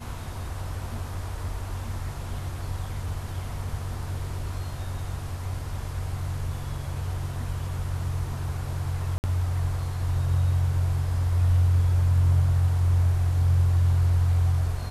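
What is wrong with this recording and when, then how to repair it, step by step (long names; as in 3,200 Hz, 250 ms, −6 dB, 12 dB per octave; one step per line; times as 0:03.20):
0:09.18–0:09.24: drop-out 59 ms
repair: repair the gap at 0:09.18, 59 ms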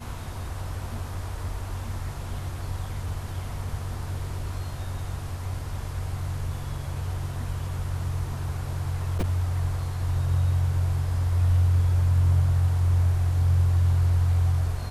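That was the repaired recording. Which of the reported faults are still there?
none of them is left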